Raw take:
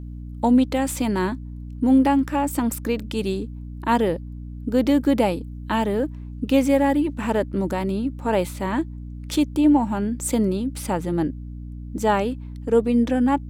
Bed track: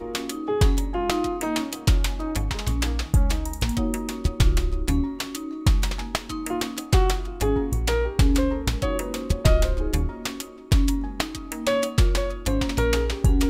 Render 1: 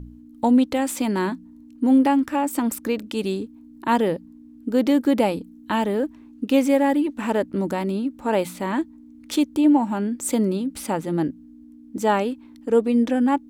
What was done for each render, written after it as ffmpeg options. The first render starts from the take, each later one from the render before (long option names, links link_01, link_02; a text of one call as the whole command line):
ffmpeg -i in.wav -af "bandreject=frequency=60:width_type=h:width=4,bandreject=frequency=120:width_type=h:width=4,bandreject=frequency=180:width_type=h:width=4" out.wav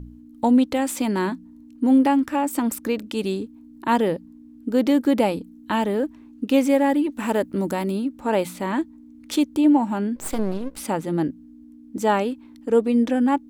ffmpeg -i in.wav -filter_complex "[0:a]asettb=1/sr,asplit=3[link_01][link_02][link_03];[link_01]atrim=end=7.124[link_04];[link_02]atrim=start=7.12:end=8.05,asetpts=PTS-STARTPTS,afade=type=in:duration=0.004:curve=qsin,afade=type=out:start_time=0.926:duration=0.004:curve=qsin,highshelf=frequency=8800:gain=10[link_05];[link_03]atrim=start=8.046[link_06];[link_04][link_05]acrossfade=duration=0.004:curve1=hsin:curve2=qsin[link_07];[link_07][link_06]acrossfade=duration=0.004:curve1=qsin:curve2=hsin,asettb=1/sr,asplit=3[link_08][link_09][link_10];[link_08]atrim=end=10.164[link_11];[link_09]atrim=start=10.16:end=10.78,asetpts=PTS-STARTPTS,afade=type=in:duration=0.004:curve=qsin,afade=type=out:start_time=0.616:duration=0.004:curve=qsin,aeval=exprs='max(val(0),0)':channel_layout=same[link_12];[link_10]atrim=start=10.776[link_13];[link_11][link_12]acrossfade=duration=0.004:curve1=hsin:curve2=qsin[link_14];[link_14][link_13]acrossfade=duration=0.004:curve1=qsin:curve2=hsin" out.wav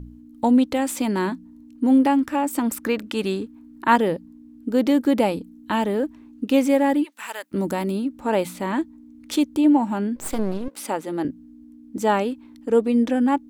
ffmpeg -i in.wav -filter_complex "[0:a]asettb=1/sr,asplit=3[link_01][link_02][link_03];[link_01]atrim=end=2.764[link_04];[link_02]atrim=start=2.76:end=3.96,asetpts=PTS-STARTPTS,afade=type=in:duration=0.004:curve=qsin,afade=type=out:start_time=1.196:duration=0.004:curve=qsin,equalizer=frequency=1500:width_type=o:width=1.5:gain=7.5[link_05];[link_03]atrim=start=3.956[link_06];[link_04][link_05]acrossfade=duration=0.004:curve1=hsin:curve2=qsin[link_07];[link_07][link_06]acrossfade=duration=0.004:curve1=qsin:curve2=hsin,asplit=3[link_08][link_09][link_10];[link_08]afade=type=out:start_time=7.03:duration=0.02[link_11];[link_09]highpass=1300,afade=type=in:start_time=7.03:duration=0.02,afade=type=out:start_time=7.51:duration=0.02[link_12];[link_10]afade=type=in:start_time=7.51:duration=0.02[link_13];[link_11][link_12][link_13]amix=inputs=3:normalize=0,asettb=1/sr,asplit=3[link_14][link_15][link_16];[link_14]atrim=end=10.684[link_17];[link_15]atrim=start=10.68:end=11.25,asetpts=PTS-STARTPTS,afade=type=in:duration=0.004:curve=qsin,afade=type=out:start_time=0.566:duration=0.004:curve=qsin,highpass=310[link_18];[link_16]atrim=start=11.246[link_19];[link_17][link_18]acrossfade=duration=0.004:curve1=hsin:curve2=qsin[link_20];[link_20][link_19]acrossfade=duration=0.004:curve1=qsin:curve2=hsin" out.wav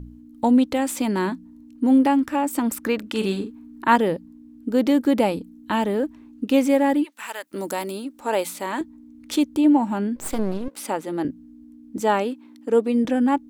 ffmpeg -i in.wav -filter_complex "[0:a]asettb=1/sr,asplit=3[link_01][link_02][link_03];[link_01]atrim=end=3.094[link_04];[link_02]atrim=start=3.09:end=3.85,asetpts=PTS-STARTPTS,afade=type=in:duration=0.004:curve=qsin,afade=type=out:start_time=0.756:duration=0.004:curve=qsin,asplit=2[link_05][link_06];[link_06]adelay=46,volume=-7dB[link_07];[link_05][link_07]amix=inputs=2:normalize=0,atrim=end_sample=33516[link_08];[link_03]atrim=start=3.846[link_09];[link_04][link_08]acrossfade=duration=0.004:curve1=hsin:curve2=qsin[link_10];[link_10][link_09]acrossfade=duration=0.004:curve1=qsin:curve2=hsin,asettb=1/sr,asplit=3[link_11][link_12][link_13];[link_11]atrim=end=7.474[link_14];[link_12]atrim=start=7.47:end=8.81,asetpts=PTS-STARTPTS,afade=type=in:duration=0.004:curve=qsin,afade=type=out:start_time=1.336:duration=0.004:curve=qsin,bass=frequency=250:gain=-15,treble=frequency=4000:gain=6[link_15];[link_13]atrim=start=8.806[link_16];[link_14][link_15]acrossfade=duration=0.004:curve1=hsin:curve2=qsin[link_17];[link_17][link_16]acrossfade=duration=0.004:curve1=qsin:curve2=hsin,asettb=1/sr,asplit=3[link_18][link_19][link_20];[link_18]atrim=end=12.004[link_21];[link_19]atrim=start=12:end=13.05,asetpts=PTS-STARTPTS,afade=type=in:duration=0.004:curve=qsin,afade=type=out:start_time=1.046:duration=0.004:curve=qsin,highpass=200[link_22];[link_20]atrim=start=13.046[link_23];[link_21][link_22]acrossfade=duration=0.004:curve1=hsin:curve2=qsin[link_24];[link_24][link_23]acrossfade=duration=0.004:curve1=qsin:curve2=hsin" out.wav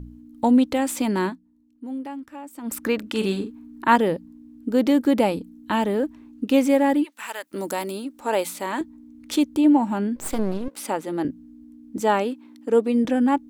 ffmpeg -i in.wav -filter_complex "[0:a]asplit=3[link_01][link_02][link_03];[link_01]atrim=end=1.42,asetpts=PTS-STARTPTS,afade=type=out:start_time=1.26:duration=0.16:curve=qua:silence=0.16788[link_04];[link_02]atrim=start=1.42:end=2.58,asetpts=PTS-STARTPTS,volume=-15.5dB[link_05];[link_03]atrim=start=2.58,asetpts=PTS-STARTPTS,afade=type=in:duration=0.16:curve=qua:silence=0.16788[link_06];[link_04][link_05][link_06]concat=n=3:v=0:a=1" out.wav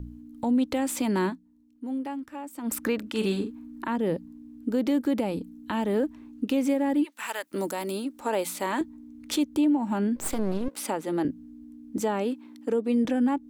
ffmpeg -i in.wav -filter_complex "[0:a]acrossover=split=400[link_01][link_02];[link_02]acompressor=threshold=-24dB:ratio=6[link_03];[link_01][link_03]amix=inputs=2:normalize=0,alimiter=limit=-17dB:level=0:latency=1:release=234" out.wav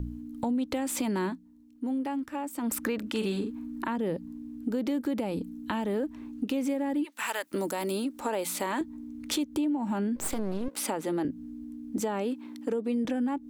ffmpeg -i in.wav -filter_complex "[0:a]asplit=2[link_01][link_02];[link_02]alimiter=level_in=4dB:limit=-24dB:level=0:latency=1:release=20,volume=-4dB,volume=-3dB[link_03];[link_01][link_03]amix=inputs=2:normalize=0,acompressor=threshold=-28dB:ratio=3" out.wav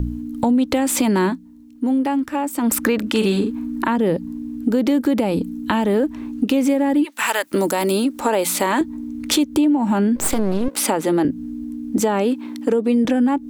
ffmpeg -i in.wav -af "volume=12dB" out.wav